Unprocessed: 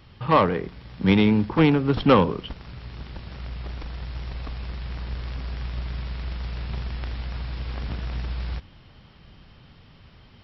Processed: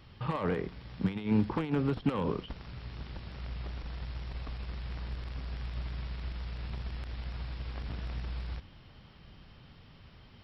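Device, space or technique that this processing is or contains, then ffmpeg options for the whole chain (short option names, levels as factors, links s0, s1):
de-esser from a sidechain: -filter_complex "[0:a]asplit=2[s0][s1];[s1]highpass=f=4700:w=0.5412,highpass=f=4700:w=1.3066,apad=whole_len=459980[s2];[s0][s2]sidechaincompress=threshold=0.002:ratio=16:attack=0.96:release=54,volume=0.631"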